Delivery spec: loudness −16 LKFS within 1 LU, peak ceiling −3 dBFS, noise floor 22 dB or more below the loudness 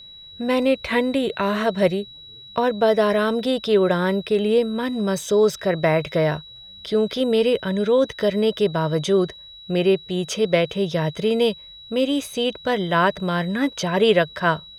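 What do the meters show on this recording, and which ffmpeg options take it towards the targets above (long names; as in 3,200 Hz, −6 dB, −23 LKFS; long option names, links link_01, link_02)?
interfering tone 3,900 Hz; level of the tone −40 dBFS; integrated loudness −21.0 LKFS; sample peak −4.5 dBFS; target loudness −16.0 LKFS
→ -af "bandreject=frequency=3900:width=30"
-af "volume=5dB,alimiter=limit=-3dB:level=0:latency=1"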